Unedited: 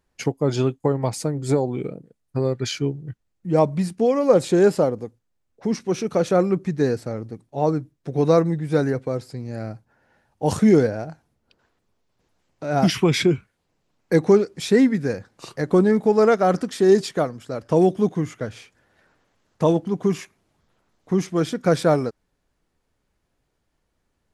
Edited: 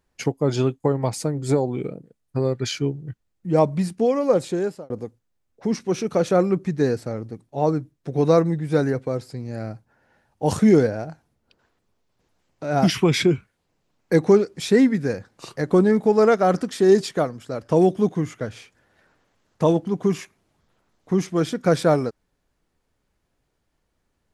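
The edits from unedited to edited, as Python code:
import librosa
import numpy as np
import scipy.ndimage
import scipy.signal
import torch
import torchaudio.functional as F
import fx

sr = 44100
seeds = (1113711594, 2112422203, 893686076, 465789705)

y = fx.edit(x, sr, fx.fade_out_span(start_s=3.77, length_s=1.13, curve='qsin'), tone=tone)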